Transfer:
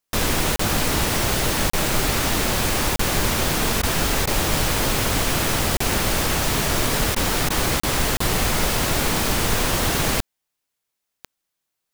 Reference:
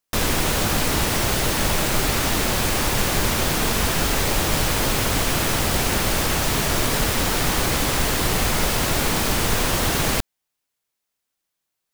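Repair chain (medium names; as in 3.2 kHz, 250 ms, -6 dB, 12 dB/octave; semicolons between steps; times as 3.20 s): de-click; interpolate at 0.56/1.70/2.96/5.77/7.80/8.17 s, 34 ms; interpolate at 3.82/4.26/7.15/7.49 s, 11 ms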